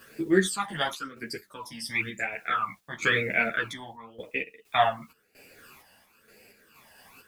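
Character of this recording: phasing stages 12, 0.97 Hz, lowest notch 400–1200 Hz; a quantiser's noise floor 12-bit, dither triangular; random-step tremolo 4.3 Hz, depth 90%; a shimmering, thickened sound

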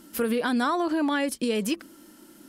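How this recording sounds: noise floor -53 dBFS; spectral tilt -4.0 dB/oct

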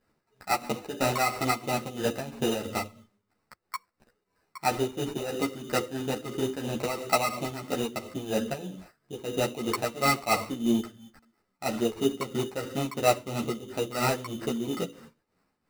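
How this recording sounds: tremolo triangle 3 Hz, depth 75%; aliases and images of a low sample rate 3300 Hz, jitter 0%; a shimmering, thickened sound

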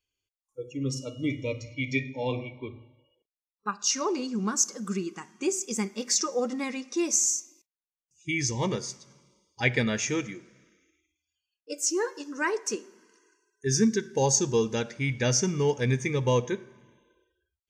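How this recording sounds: noise floor -96 dBFS; spectral tilt -3.5 dB/oct

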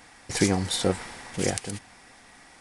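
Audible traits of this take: noise floor -53 dBFS; spectral tilt -4.0 dB/oct

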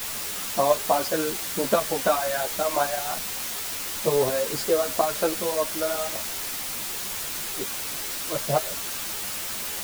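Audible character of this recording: tremolo saw up 2.8 Hz, depth 60%; a quantiser's noise floor 6-bit, dither triangular; a shimmering, thickened sound

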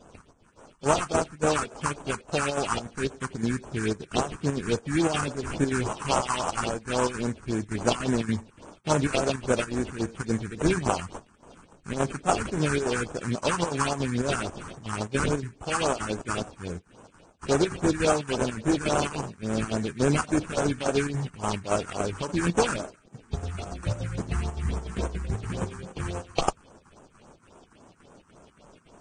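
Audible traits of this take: aliases and images of a low sample rate 2000 Hz, jitter 20%; phasing stages 4, 3.6 Hz, lowest notch 550–4500 Hz; chopped level 3.5 Hz, depth 60%, duty 75%; Vorbis

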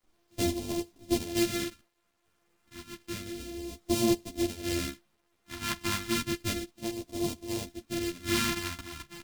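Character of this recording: a buzz of ramps at a fixed pitch in blocks of 128 samples; phasing stages 2, 0.31 Hz, lowest notch 520–1400 Hz; a quantiser's noise floor 12-bit, dither none; a shimmering, thickened sound

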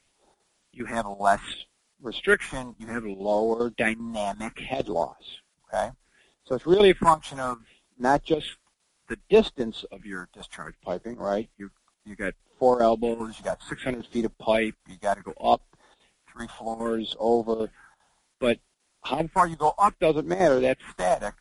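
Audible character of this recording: phasing stages 4, 0.65 Hz, lowest notch 350–2600 Hz; a quantiser's noise floor 12-bit, dither triangular; chopped level 2.5 Hz, depth 65%, duty 85%; MP3

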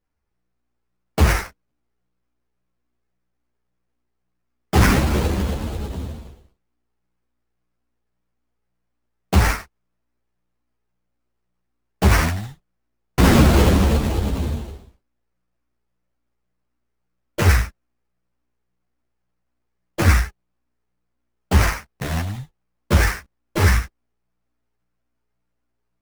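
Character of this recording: aliases and images of a low sample rate 3700 Hz, jitter 20%; a shimmering, thickened sound

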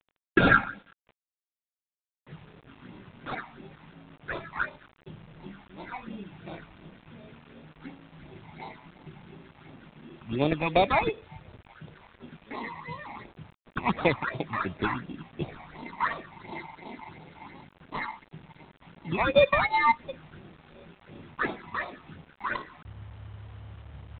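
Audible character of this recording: aliases and images of a low sample rate 3000 Hz, jitter 0%; phasing stages 8, 2.8 Hz, lowest notch 430–1700 Hz; a quantiser's noise floor 10-bit, dither none; G.726

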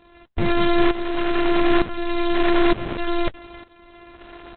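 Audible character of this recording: a buzz of ramps at a fixed pitch in blocks of 128 samples; tremolo saw up 1.1 Hz, depth 80%; Opus

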